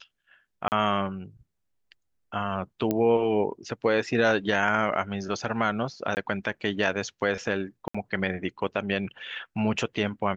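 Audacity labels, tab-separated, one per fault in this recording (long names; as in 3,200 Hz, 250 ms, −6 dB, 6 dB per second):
0.680000	0.720000	drop-out 39 ms
2.910000	2.910000	click −13 dBFS
6.150000	6.170000	drop-out 19 ms
7.880000	7.950000	drop-out 65 ms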